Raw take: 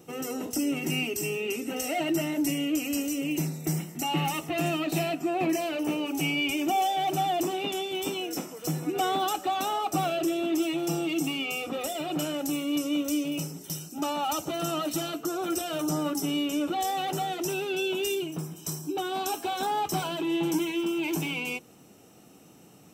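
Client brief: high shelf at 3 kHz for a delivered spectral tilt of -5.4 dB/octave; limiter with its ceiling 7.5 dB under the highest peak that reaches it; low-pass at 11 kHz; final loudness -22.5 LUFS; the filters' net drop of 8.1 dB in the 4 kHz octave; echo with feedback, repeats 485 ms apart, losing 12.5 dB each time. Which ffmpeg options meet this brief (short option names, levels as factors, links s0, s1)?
-af "lowpass=11000,highshelf=f=3000:g=-5.5,equalizer=f=4000:t=o:g=-8.5,alimiter=limit=0.0631:level=0:latency=1,aecho=1:1:485|970|1455:0.237|0.0569|0.0137,volume=2.99"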